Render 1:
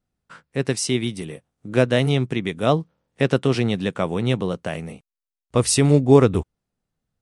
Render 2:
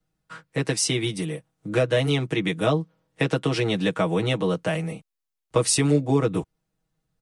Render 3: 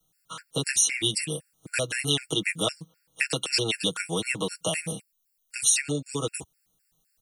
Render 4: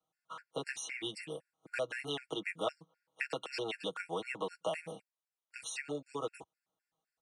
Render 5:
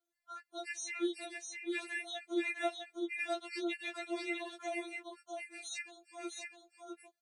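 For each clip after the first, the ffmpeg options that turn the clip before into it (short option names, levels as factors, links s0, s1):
-filter_complex "[0:a]acrossover=split=210[s0][s1];[s1]acompressor=threshold=0.0891:ratio=5[s2];[s0][s2]amix=inputs=2:normalize=0,aecho=1:1:6.3:0.98,acrossover=split=240|930|4600[s3][s4][s5][s6];[s3]acompressor=threshold=0.0398:ratio=6[s7];[s7][s4][s5][s6]amix=inputs=4:normalize=0"
-filter_complex "[0:a]acrossover=split=95|2800|7400[s0][s1][s2][s3];[s0]acompressor=threshold=0.00316:ratio=4[s4];[s1]acompressor=threshold=0.0447:ratio=4[s5];[s2]acompressor=threshold=0.0158:ratio=4[s6];[s3]acompressor=threshold=0.00355:ratio=4[s7];[s4][s5][s6][s7]amix=inputs=4:normalize=0,crystalizer=i=7:c=0,afftfilt=real='re*gt(sin(2*PI*3.9*pts/sr)*(1-2*mod(floor(b*sr/1024/1400),2)),0)':imag='im*gt(sin(2*PI*3.9*pts/sr)*(1-2*mod(floor(b*sr/1024/1400),2)),0)':win_size=1024:overlap=0.75"
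-af "bandpass=f=840:t=q:w=1.1:csg=0,volume=0.75"
-af "aecho=1:1:654:0.631,afftfilt=real='re*4*eq(mod(b,16),0)':imag='im*4*eq(mod(b,16),0)':win_size=2048:overlap=0.75,volume=1.19"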